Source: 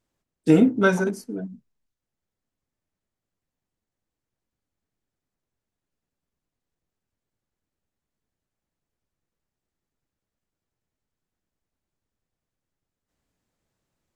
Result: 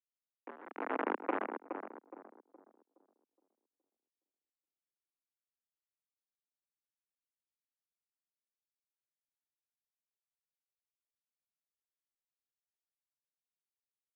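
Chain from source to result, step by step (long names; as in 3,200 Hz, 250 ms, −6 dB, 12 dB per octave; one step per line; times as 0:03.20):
compressor on every frequency bin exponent 0.4
noise reduction from a noise print of the clip's start 16 dB
treble cut that deepens with the level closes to 400 Hz, closed at −16.5 dBFS
automatic gain control gain up to 7 dB
brickwall limiter −11 dBFS, peak gain reduction 8 dB
downward compressor 1.5 to 1, threshold −47 dBFS, peak gain reduction 11.5 dB
bit reduction 4 bits
amplitude tremolo 0.85 Hz, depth 94%
soft clipping −18.5 dBFS, distortion −21 dB
feedback echo with a low-pass in the loop 418 ms, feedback 36%, low-pass 1,300 Hz, level −6.5 dB
single-sideband voice off tune +83 Hz 160–2,200 Hz
one half of a high-frequency compander decoder only
level +1 dB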